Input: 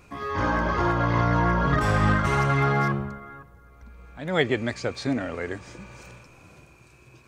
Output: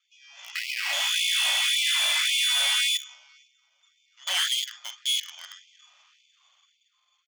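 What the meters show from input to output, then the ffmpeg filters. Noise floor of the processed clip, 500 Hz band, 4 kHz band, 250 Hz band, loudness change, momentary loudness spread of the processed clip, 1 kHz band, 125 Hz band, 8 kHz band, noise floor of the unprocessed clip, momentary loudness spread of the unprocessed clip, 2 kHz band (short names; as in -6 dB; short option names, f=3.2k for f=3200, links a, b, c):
-72 dBFS, -22.5 dB, +17.5 dB, under -40 dB, +1.0 dB, 13 LU, -15.5 dB, under -40 dB, +17.0 dB, -53 dBFS, 15 LU, 0.0 dB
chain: -filter_complex "[0:a]bandreject=f=60:t=h:w=6,bandreject=f=120:t=h:w=6,bandreject=f=180:t=h:w=6,bandreject=f=240:t=h:w=6,bandreject=f=300:t=h:w=6,bandreject=f=360:t=h:w=6,aecho=1:1:45|51|214:0.376|0.355|0.119,lowpass=f=3.1k:t=q:w=0.5098,lowpass=f=3.1k:t=q:w=0.6013,lowpass=f=3.1k:t=q:w=0.9,lowpass=f=3.1k:t=q:w=2.563,afreqshift=-3600,dynaudnorm=f=540:g=5:m=12dB,afwtdn=0.112,aresample=16000,aeval=exprs='max(val(0),0)':c=same,aresample=44100,alimiter=limit=-6dB:level=0:latency=1:release=159,asplit=2[a][b];[b]acrusher=bits=4:mix=0:aa=0.000001,volume=-4dB[c];[a][c]amix=inputs=2:normalize=0,asoftclip=type=tanh:threshold=-16dB,afftfilt=real='re*gte(b*sr/1024,520*pow(2100/520,0.5+0.5*sin(2*PI*1.8*pts/sr)))':imag='im*gte(b*sr/1024,520*pow(2100/520,0.5+0.5*sin(2*PI*1.8*pts/sr)))':win_size=1024:overlap=0.75"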